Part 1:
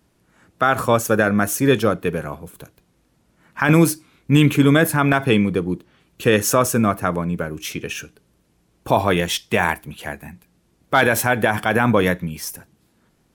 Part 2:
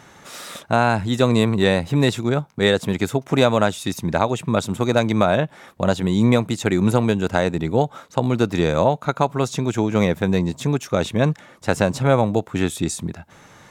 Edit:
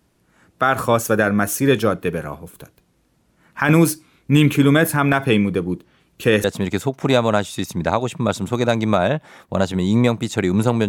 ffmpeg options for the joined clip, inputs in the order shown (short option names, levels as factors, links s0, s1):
-filter_complex "[0:a]apad=whole_dur=10.88,atrim=end=10.88,atrim=end=6.442[s0];[1:a]atrim=start=2.718:end=7.16[s1];[s0][s1]acrossfade=d=0.004:c1=hsin:c2=hsin"